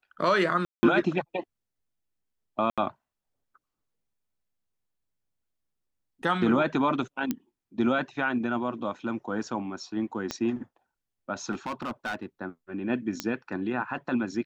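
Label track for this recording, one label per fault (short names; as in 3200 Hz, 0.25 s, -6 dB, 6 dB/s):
0.650000	0.830000	gap 0.18 s
2.700000	2.780000	gap 76 ms
7.310000	7.310000	pop -14 dBFS
10.310000	10.310000	pop -16 dBFS
11.510000	12.260000	clipped -28 dBFS
13.200000	13.200000	pop -13 dBFS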